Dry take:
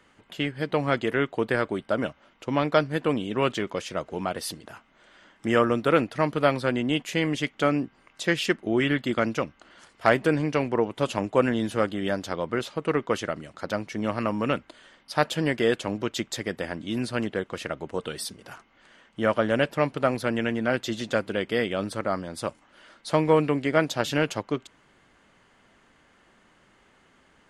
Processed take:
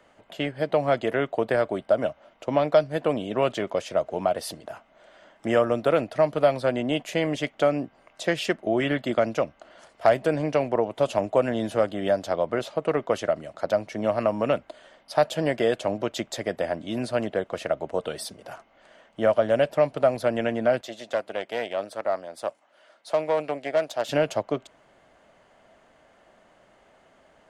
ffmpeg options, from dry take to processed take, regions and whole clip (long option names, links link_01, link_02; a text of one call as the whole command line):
ffmpeg -i in.wav -filter_complex "[0:a]asettb=1/sr,asplit=3[link_01][link_02][link_03];[link_01]atrim=end=20.814[link_04];[link_02]atrim=start=20.81:end=24.09,asetpts=PTS-STARTPTS,afade=type=in:duration=0.004:curve=qsin,afade=type=out:start_time=3.276:duration=0.004:curve=qsin,aeval=exprs='(tanh(7.08*val(0)+0.8)-tanh(0.8))/7.08':channel_layout=same,highpass=frequency=550:poles=1[link_05];[link_03]atrim=start=24.086[link_06];[link_04][link_05]acrossfade=duration=0.004:curve1=hsin:curve2=qsin[link_07];[link_07][link_06]acrossfade=duration=0.004:curve1=qsin:curve2=hsin,equalizer=frequency=640:width_type=o:width=0.64:gain=14.5,acrossover=split=150|3000[link_08][link_09][link_10];[link_09]acompressor=threshold=-18dB:ratio=2[link_11];[link_08][link_11][link_10]amix=inputs=3:normalize=0,volume=-2dB" out.wav